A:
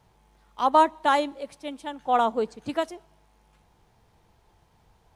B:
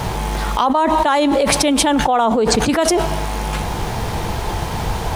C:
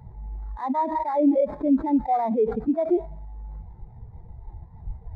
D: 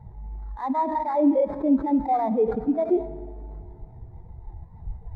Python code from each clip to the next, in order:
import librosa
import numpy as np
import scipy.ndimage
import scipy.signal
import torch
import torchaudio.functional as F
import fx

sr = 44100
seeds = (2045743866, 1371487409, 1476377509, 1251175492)

y1 = fx.env_flatten(x, sr, amount_pct=100)
y2 = fx.sample_hold(y1, sr, seeds[0], rate_hz=2900.0, jitter_pct=20)
y2 = fx.spectral_expand(y2, sr, expansion=2.5)
y2 = y2 * 10.0 ** (-8.0 / 20.0)
y3 = fx.wow_flutter(y2, sr, seeds[1], rate_hz=2.1, depth_cents=25.0)
y3 = fx.rev_freeverb(y3, sr, rt60_s=2.4, hf_ratio=0.65, predelay_ms=5, drr_db=14.0)